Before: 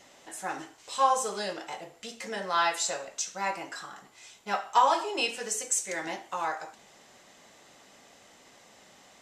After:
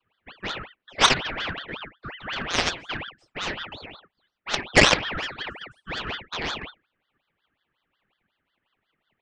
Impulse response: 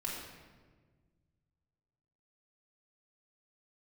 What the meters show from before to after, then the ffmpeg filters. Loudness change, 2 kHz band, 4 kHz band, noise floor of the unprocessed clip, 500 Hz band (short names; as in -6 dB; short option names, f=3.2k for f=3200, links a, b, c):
+5.0 dB, +9.5 dB, +11.0 dB, -57 dBFS, +3.0 dB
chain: -af "afftdn=nr=25:nf=-42,afreqshift=290,highpass=f=220:w=0.5412,highpass=f=220:w=1.3066,equalizer=f=220:t=q:w=4:g=-9,equalizer=f=520:t=q:w=4:g=9,equalizer=f=950:t=q:w=4:g=5,equalizer=f=1.8k:t=q:w=4:g=3,lowpass=f=2k:w=0.5412,lowpass=f=2k:w=1.3066,aeval=exprs='0.398*(cos(1*acos(clip(val(0)/0.398,-1,1)))-cos(1*PI/2))+0.01*(cos(3*acos(clip(val(0)/0.398,-1,1)))-cos(3*PI/2))+0.0224*(cos(6*acos(clip(val(0)/0.398,-1,1)))-cos(6*PI/2))+0.1*(cos(7*acos(clip(val(0)/0.398,-1,1)))-cos(7*PI/2))':c=same,aeval=exprs='val(0)*sin(2*PI*1600*n/s+1600*0.6/5.5*sin(2*PI*5.5*n/s))':c=same,volume=7dB"